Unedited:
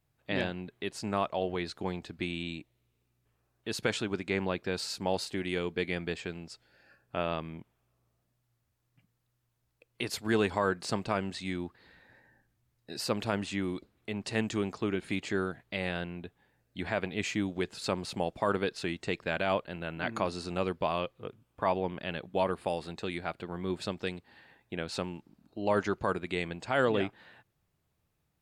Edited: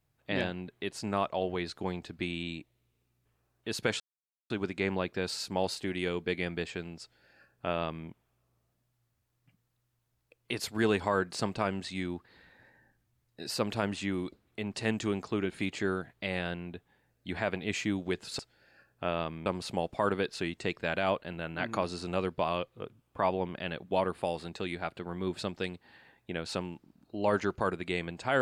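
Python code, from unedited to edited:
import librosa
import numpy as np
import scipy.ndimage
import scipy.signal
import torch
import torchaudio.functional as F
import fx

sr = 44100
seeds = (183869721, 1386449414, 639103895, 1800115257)

y = fx.edit(x, sr, fx.insert_silence(at_s=4.0, length_s=0.5),
    fx.duplicate(start_s=6.51, length_s=1.07, to_s=17.89), tone=tone)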